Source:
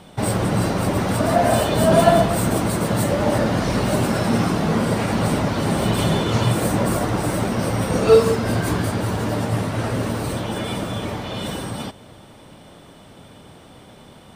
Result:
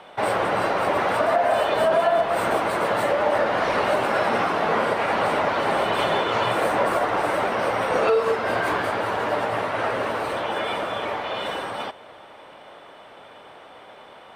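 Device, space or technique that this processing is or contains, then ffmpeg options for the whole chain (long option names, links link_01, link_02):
DJ mixer with the lows and highs turned down: -filter_complex "[0:a]acrossover=split=450 3100:gain=0.0708 1 0.126[link_01][link_02][link_03];[link_01][link_02][link_03]amix=inputs=3:normalize=0,alimiter=limit=-16.5dB:level=0:latency=1:release=214,volume=5.5dB"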